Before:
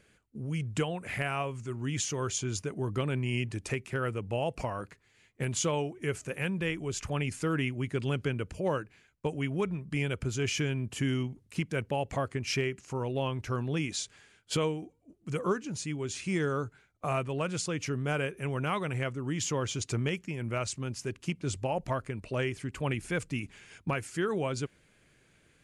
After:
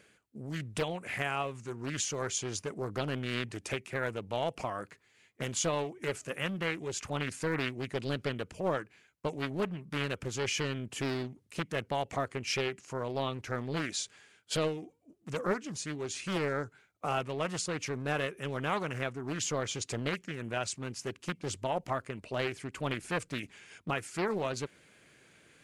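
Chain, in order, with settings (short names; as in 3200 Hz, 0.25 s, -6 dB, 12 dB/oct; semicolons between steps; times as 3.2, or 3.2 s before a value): HPF 230 Hz 6 dB/oct; reverse; upward compressor, threshold -53 dBFS; reverse; Doppler distortion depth 0.75 ms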